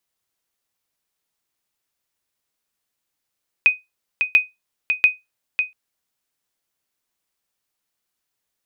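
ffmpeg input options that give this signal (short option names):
-f lavfi -i "aevalsrc='0.562*(sin(2*PI*2500*mod(t,0.69))*exp(-6.91*mod(t,0.69)/0.19)+0.473*sin(2*PI*2500*max(mod(t,0.69)-0.55,0))*exp(-6.91*max(mod(t,0.69)-0.55,0)/0.19))':d=2.07:s=44100"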